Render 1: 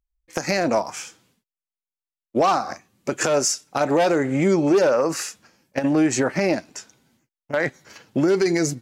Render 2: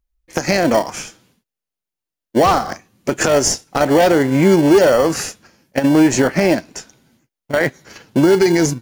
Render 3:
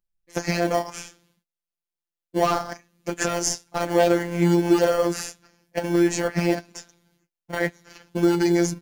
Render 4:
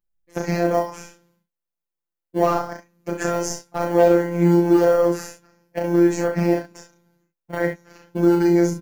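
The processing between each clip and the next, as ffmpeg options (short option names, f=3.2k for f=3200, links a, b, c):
-filter_complex "[0:a]bandreject=f=7.9k:w=11,asplit=2[a][b];[b]acrusher=samples=35:mix=1:aa=0.000001,volume=-9.5dB[c];[a][c]amix=inputs=2:normalize=0,volume=5dB"
-af "afftfilt=real='hypot(re,im)*cos(PI*b)':imag='0':win_size=1024:overlap=0.75,volume=-4.5dB"
-filter_complex "[0:a]equalizer=f=5.8k:t=o:w=2.4:g=-8.5,asplit=2[a][b];[b]aecho=0:1:35|66:0.631|0.398[c];[a][c]amix=inputs=2:normalize=0"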